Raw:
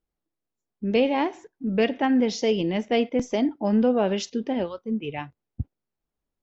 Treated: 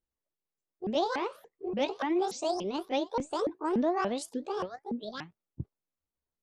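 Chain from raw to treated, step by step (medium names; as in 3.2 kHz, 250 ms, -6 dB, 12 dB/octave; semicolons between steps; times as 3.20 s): sawtooth pitch modulation +11.5 st, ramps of 289 ms; trim -7 dB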